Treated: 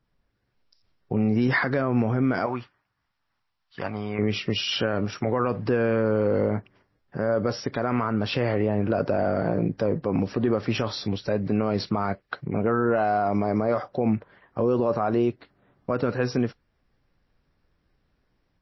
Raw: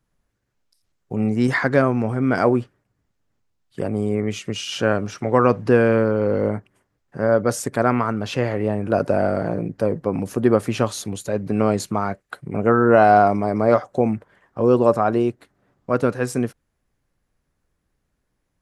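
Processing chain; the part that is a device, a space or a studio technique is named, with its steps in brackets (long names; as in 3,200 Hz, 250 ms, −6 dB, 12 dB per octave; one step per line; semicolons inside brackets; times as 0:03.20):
0:02.46–0:04.19: low shelf with overshoot 670 Hz −11.5 dB, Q 1.5
low-bitrate web radio (automatic gain control gain up to 4 dB; brickwall limiter −13 dBFS, peak gain reduction 11 dB; MP3 24 kbit/s 16,000 Hz)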